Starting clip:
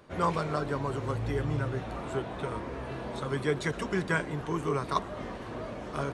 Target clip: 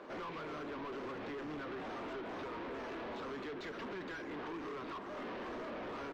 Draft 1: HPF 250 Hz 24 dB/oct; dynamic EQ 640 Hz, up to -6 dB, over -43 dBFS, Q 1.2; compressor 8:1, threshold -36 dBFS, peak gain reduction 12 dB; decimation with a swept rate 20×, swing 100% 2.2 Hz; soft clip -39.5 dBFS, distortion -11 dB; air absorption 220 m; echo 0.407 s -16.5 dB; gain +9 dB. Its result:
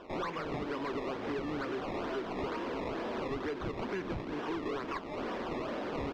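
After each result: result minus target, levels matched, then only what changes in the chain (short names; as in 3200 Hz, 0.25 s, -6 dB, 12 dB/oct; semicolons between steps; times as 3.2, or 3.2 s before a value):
decimation with a swept rate: distortion +14 dB; echo 0.141 s early; soft clip: distortion -6 dB
change: decimation with a swept rate 4×, swing 100% 2.2 Hz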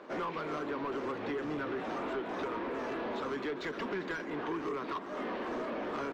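echo 0.141 s early; soft clip: distortion -6 dB
change: echo 0.548 s -16.5 dB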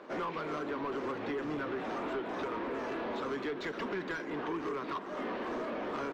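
soft clip: distortion -6 dB
change: soft clip -49.5 dBFS, distortion -5 dB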